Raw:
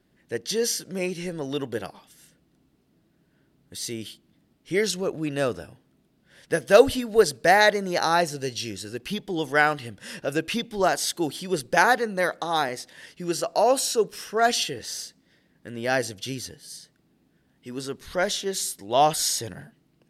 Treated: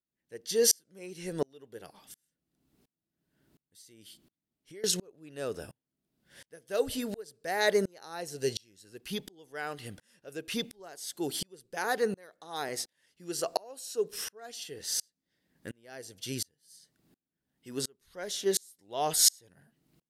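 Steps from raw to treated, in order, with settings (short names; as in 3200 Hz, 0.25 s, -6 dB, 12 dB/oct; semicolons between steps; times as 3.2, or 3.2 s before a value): dynamic EQ 420 Hz, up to +7 dB, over -38 dBFS, Q 3.2; 3.81–4.84 compressor 4:1, threshold -38 dBFS, peak gain reduction 20 dB; high shelf 5700 Hz +9.5 dB; dB-ramp tremolo swelling 1.4 Hz, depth 36 dB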